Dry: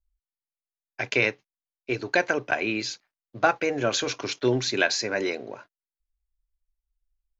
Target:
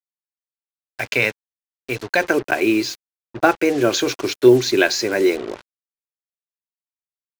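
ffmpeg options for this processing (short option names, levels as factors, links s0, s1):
-af "asetnsamples=n=441:p=0,asendcmd='2.21 equalizer g 10.5',equalizer=f=350:t=o:w=0.47:g=-5,acrusher=bits=5:mix=0:aa=0.5,volume=1.68"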